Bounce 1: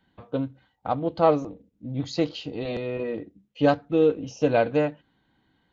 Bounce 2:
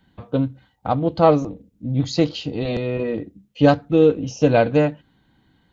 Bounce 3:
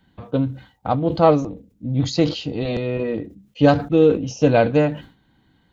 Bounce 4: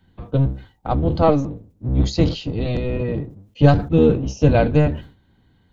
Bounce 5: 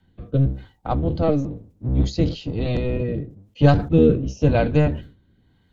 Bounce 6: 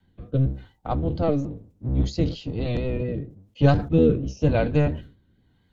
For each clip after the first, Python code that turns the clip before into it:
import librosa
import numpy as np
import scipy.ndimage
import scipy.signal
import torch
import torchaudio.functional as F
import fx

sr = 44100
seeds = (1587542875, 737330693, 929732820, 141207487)

y1 = fx.bass_treble(x, sr, bass_db=6, treble_db=4)
y1 = y1 * librosa.db_to_amplitude(4.5)
y2 = fx.sustainer(y1, sr, db_per_s=140.0)
y3 = fx.octave_divider(y2, sr, octaves=1, level_db=4.0)
y3 = y3 * librosa.db_to_amplitude(-2.0)
y4 = fx.rotary(y3, sr, hz=1.0)
y5 = fx.vibrato(y4, sr, rate_hz=4.3, depth_cents=43.0)
y5 = y5 * librosa.db_to_amplitude(-3.0)